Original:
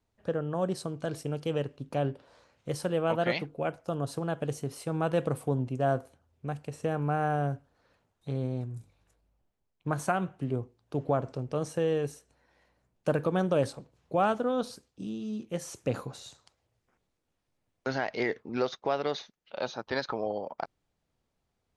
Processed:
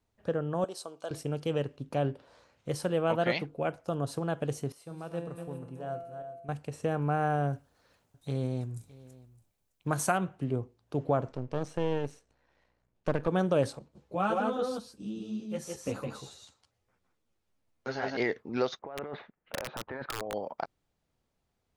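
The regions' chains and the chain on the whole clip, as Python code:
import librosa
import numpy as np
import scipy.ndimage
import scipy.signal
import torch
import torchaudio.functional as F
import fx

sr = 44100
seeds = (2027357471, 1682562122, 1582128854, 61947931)

y = fx.chain(x, sr, fx.highpass(hz=600.0, slope=12),
    fx.peak_eq(hz=1900.0, db=-11.0, octaves=0.68), at=(0.64, 1.11))
y = fx.chain(y, sr, fx.reverse_delay_fb(ms=188, feedback_pct=49, wet_db=-8.0),
    fx.comb_fb(f0_hz=170.0, decay_s=1.0, harmonics='all', damping=0.0, mix_pct=80), at=(4.72, 6.49))
y = fx.chain(y, sr, fx.high_shelf(hz=4400.0, db=11.0),
    fx.echo_single(ms=612, db=-20.5), at=(7.53, 10.18))
y = fx.chain(y, sr, fx.halfwave_gain(db=-12.0),
    fx.air_absorb(metres=56.0), at=(11.28, 13.28))
y = fx.chain(y, sr, fx.echo_single(ms=161, db=-3.5),
    fx.ensemble(), at=(13.79, 18.17))
y = fx.chain(y, sr, fx.lowpass(hz=2100.0, slope=24),
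    fx.over_compress(threshold_db=-37.0, ratio=-1.0),
    fx.overflow_wrap(gain_db=26.5), at=(18.79, 20.34))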